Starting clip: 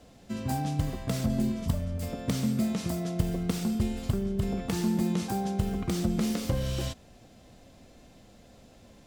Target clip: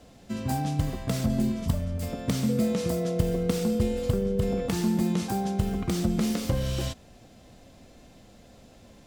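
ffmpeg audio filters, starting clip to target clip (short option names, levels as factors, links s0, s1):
-filter_complex "[0:a]asettb=1/sr,asplit=3[s0][s1][s2];[s0]atrim=end=2.494[s3];[s1]atrim=start=2.49:end=4.68,asetpts=PTS-STARTPTS,afade=t=in:d=0.004:c=qsin,afade=t=out:st=2.186:d=0.004:c=qsin,aeval=exprs='val(0)+0.0282*sin(2*PI*490*n/s)':c=same[s4];[s2]atrim=start=4.676[s5];[s3][s4]acrossfade=d=0.004:c1=hsin:c2=qsin[s6];[s6][s5]acrossfade=d=0.004:c1=qsin:c2=hsin,volume=1.26"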